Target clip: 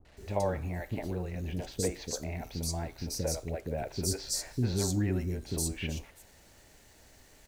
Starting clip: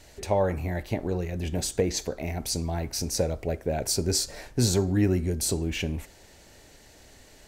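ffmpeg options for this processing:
-filter_complex "[0:a]acrossover=split=400|3800[a][b][c];[b]adelay=50[d];[c]adelay=170[e];[a][d][e]amix=inputs=3:normalize=0,acrusher=bits=8:mix=0:aa=0.5,volume=-5dB"

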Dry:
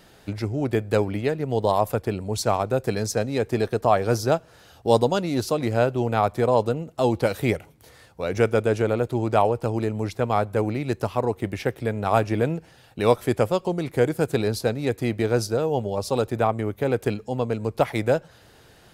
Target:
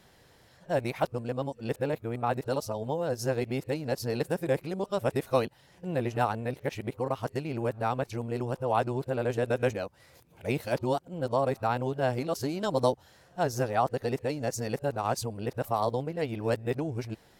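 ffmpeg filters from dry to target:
-af "areverse,asetrate=48000,aresample=44100,volume=-7dB"

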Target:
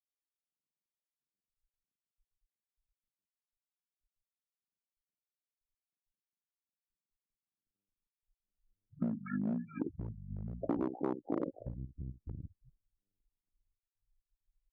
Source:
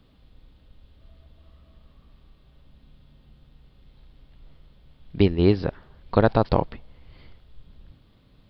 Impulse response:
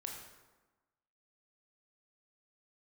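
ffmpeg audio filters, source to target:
-filter_complex "[0:a]asplit=2[a][b];[b]adelay=36,volume=-13.5dB[c];[a][c]amix=inputs=2:normalize=0,afftfilt=real='re*gte(hypot(re,im),0.0708)':imag='im*gte(hypot(re,im),0.0708)':win_size=1024:overlap=0.75,equalizer=f=1.5k:w=1.3:g=-2.5,acrossover=split=230|1600[d][e][f];[f]adelay=140[g];[d]adelay=560[h];[h][e][g]amix=inputs=3:normalize=0,volume=15dB,asoftclip=hard,volume=-15dB,highpass=f=180:p=1,acompressor=threshold=-29dB:ratio=6,bass=f=250:g=-11,treble=f=4k:g=-12,asetrate=25442,aresample=44100,volume=-1dB"

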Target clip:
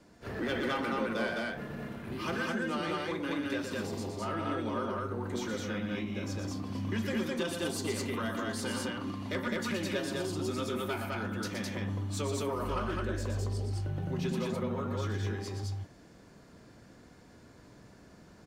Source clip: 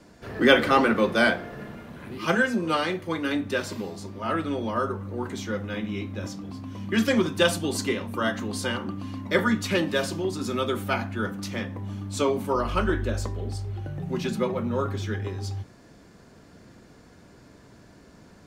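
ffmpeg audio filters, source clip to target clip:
-filter_complex "[0:a]acompressor=threshold=-35dB:ratio=3,agate=range=-7dB:threshold=-40dB:ratio=16:detection=peak,asoftclip=type=tanh:threshold=-27dB,asplit=2[a][b];[b]aecho=0:1:119.5|209.9:0.501|0.891[c];[a][c]amix=inputs=2:normalize=0"

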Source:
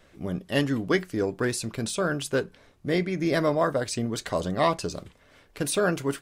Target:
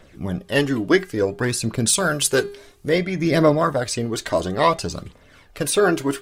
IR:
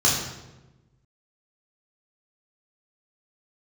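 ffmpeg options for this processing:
-filter_complex "[0:a]asettb=1/sr,asplit=3[a][b][c];[a]atrim=end=1.874[d];[b]atrim=start=1.87:end=2.89,asetpts=PTS-STARTPTS,afade=t=in:d=0.004:c=qsin,afade=t=out:st=1.016:d=0.004:c=qsin,equalizer=f=12k:t=o:w=2.4:g=11.5[e];[c]atrim=start=2.886[f];[d][e]acrossfade=d=0.004:c1=hsin:c2=qsin[g];[g][f]acrossfade=d=0.004:c1=qsin:c2=hsin,aphaser=in_gain=1:out_gain=1:delay=3.3:decay=0.44:speed=0.58:type=triangular,bandreject=f=404.1:t=h:w=4,bandreject=f=808.2:t=h:w=4,bandreject=f=1.2123k:t=h:w=4,bandreject=f=1.6164k:t=h:w=4,bandreject=f=2.0205k:t=h:w=4,bandreject=f=2.4246k:t=h:w=4,bandreject=f=2.8287k:t=h:w=4,bandreject=f=3.2328k:t=h:w=4,bandreject=f=3.6369k:t=h:w=4,bandreject=f=4.041k:t=h:w=4,bandreject=f=4.4451k:t=h:w=4,volume=5dB"

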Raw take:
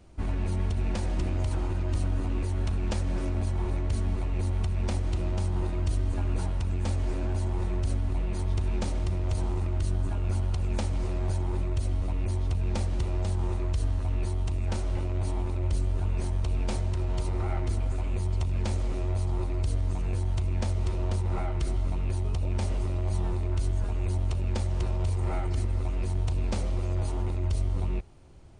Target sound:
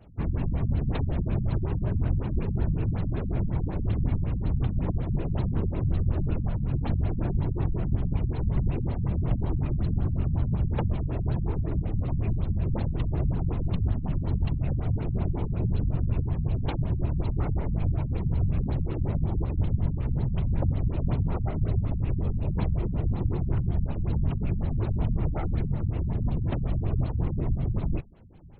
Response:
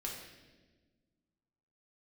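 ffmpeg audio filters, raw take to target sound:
-af "afftfilt=real='hypot(re,im)*cos(2*PI*random(0))':imag='hypot(re,im)*sin(2*PI*random(1))':win_size=512:overlap=0.75,afftfilt=real='re*lt(b*sr/1024,220*pow(4400/220,0.5+0.5*sin(2*PI*5.4*pts/sr)))':imag='im*lt(b*sr/1024,220*pow(4400/220,0.5+0.5*sin(2*PI*5.4*pts/sr)))':win_size=1024:overlap=0.75,volume=8dB"

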